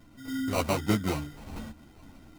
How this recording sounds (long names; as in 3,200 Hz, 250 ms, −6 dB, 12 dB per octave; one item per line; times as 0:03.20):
sample-and-hold tremolo 4.1 Hz
aliases and images of a low sample rate 1,700 Hz, jitter 0%
a shimmering, thickened sound